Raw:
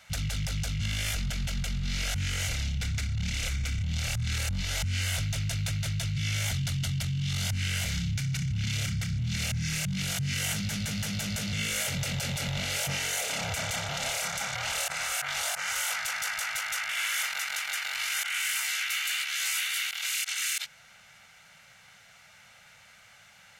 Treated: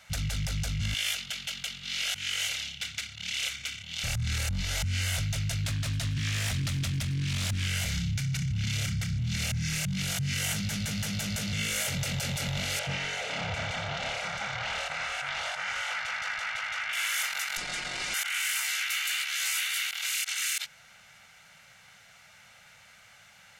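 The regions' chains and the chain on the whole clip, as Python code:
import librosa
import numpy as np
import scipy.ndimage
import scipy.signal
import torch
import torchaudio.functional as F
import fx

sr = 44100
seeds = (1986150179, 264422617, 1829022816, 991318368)

y = fx.chain(x, sr, fx.highpass(hz=1100.0, slope=6),
    fx.peak_eq(hz=3100.0, db=7.0, octaves=0.68), at=(0.94, 4.04))
y = fx.chain(y, sr, fx.echo_single(ms=268, db=-20.0),
    fx.doppler_dist(depth_ms=0.47), at=(5.64, 7.67))
y = fx.chain(y, sr, fx.lowpass(hz=3600.0, slope=12),
    fx.echo_single(ms=81, db=-9.0), at=(12.79, 16.93))
y = fx.chain(y, sr, fx.lower_of_two(delay_ms=5.5),
    fx.lowpass(hz=8500.0, slope=24), at=(17.57, 18.14))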